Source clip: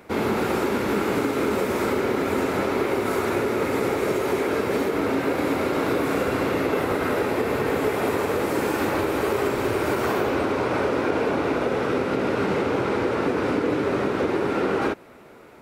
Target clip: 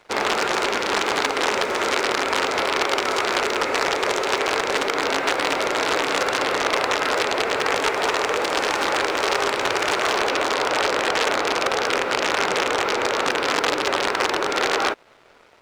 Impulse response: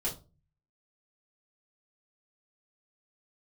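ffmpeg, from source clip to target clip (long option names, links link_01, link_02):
-filter_complex "[0:a]aeval=exprs='0.299*(cos(1*acos(clip(val(0)/0.299,-1,1)))-cos(1*PI/2))+0.0237*(cos(3*acos(clip(val(0)/0.299,-1,1)))-cos(3*PI/2))+0.0133*(cos(4*acos(clip(val(0)/0.299,-1,1)))-cos(4*PI/2))':channel_layout=same,aeval=exprs='(mod(6.68*val(0)+1,2)-1)/6.68':channel_layout=same,acrossover=split=440 7300:gain=0.141 1 0.0631[link_01][link_02][link_03];[link_01][link_02][link_03]amix=inputs=3:normalize=0,aeval=exprs='sgn(val(0))*max(abs(val(0))-0.00188,0)':channel_layout=same,volume=7dB"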